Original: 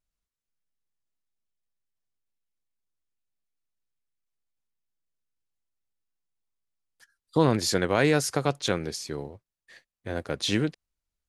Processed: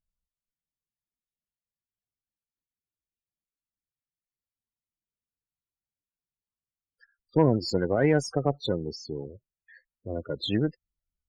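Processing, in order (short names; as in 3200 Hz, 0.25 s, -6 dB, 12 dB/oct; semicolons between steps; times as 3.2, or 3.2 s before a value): wow and flutter 17 cents; loudest bins only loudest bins 16; added harmonics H 4 -23 dB, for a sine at -8.5 dBFS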